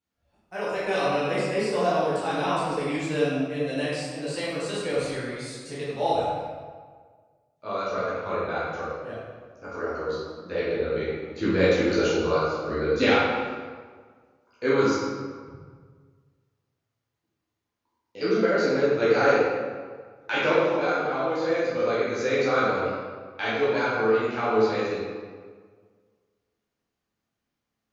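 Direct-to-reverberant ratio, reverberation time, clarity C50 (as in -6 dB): -10.0 dB, 1.6 s, -2.5 dB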